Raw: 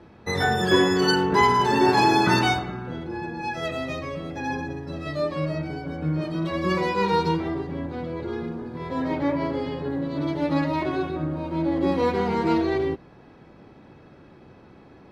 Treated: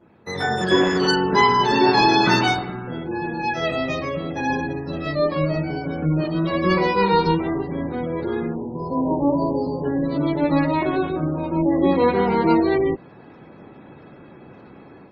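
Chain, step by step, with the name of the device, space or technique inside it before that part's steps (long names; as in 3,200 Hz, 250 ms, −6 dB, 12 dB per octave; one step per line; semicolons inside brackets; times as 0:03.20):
0:01.23–0:02.36: dynamic equaliser 3,700 Hz, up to +5 dB, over −40 dBFS, Q 1.3
0:08.55–0:09.84: Chebyshev band-stop filter 1,000–4,500 Hz, order 3
noise-suppressed video call (high-pass filter 110 Hz 12 dB per octave; gate on every frequency bin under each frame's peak −30 dB strong; automatic gain control gain up to 9 dB; level −3 dB; Opus 20 kbit/s 48,000 Hz)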